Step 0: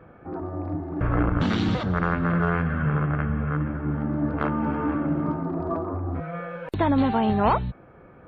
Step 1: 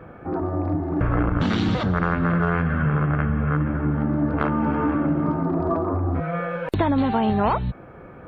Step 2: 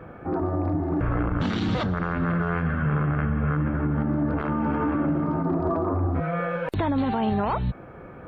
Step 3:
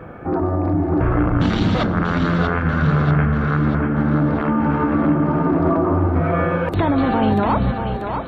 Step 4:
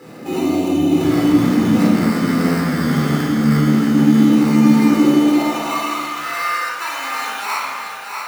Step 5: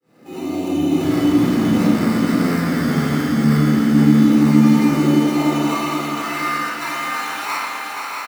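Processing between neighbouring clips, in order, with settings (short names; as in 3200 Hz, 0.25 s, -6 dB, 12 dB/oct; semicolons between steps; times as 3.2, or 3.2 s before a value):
compressor 3:1, threshold -26 dBFS, peak gain reduction 8.5 dB; gain +7 dB
limiter -16.5 dBFS, peak gain reduction 9 dB
split-band echo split 310 Hz, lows 0.248 s, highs 0.638 s, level -6 dB; gain +6 dB
sample-rate reducer 3300 Hz, jitter 0%; high-pass sweep 230 Hz -> 1300 Hz, 4.78–5.86; shoebox room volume 1200 m³, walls mixed, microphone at 4.1 m; gain -9.5 dB
opening faded in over 0.79 s; on a send: feedback echo 0.476 s, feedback 50%, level -5.5 dB; on the sum: gain -2.5 dB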